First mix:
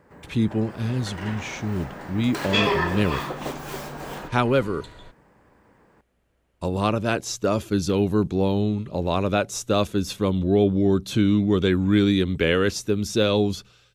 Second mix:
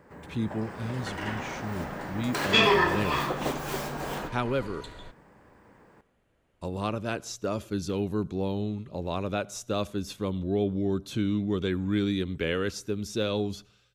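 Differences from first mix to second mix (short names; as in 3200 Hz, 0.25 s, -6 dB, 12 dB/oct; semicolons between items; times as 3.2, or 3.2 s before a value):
speech -8.5 dB; reverb: on, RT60 0.45 s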